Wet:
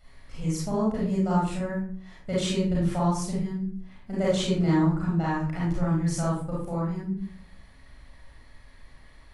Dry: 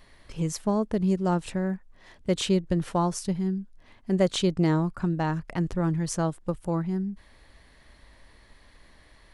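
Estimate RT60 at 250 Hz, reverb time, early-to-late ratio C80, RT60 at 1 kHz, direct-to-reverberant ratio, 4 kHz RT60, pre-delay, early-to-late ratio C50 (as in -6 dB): 0.65 s, 0.45 s, 6.0 dB, 0.45 s, -7.0 dB, 0.30 s, 32 ms, -0.5 dB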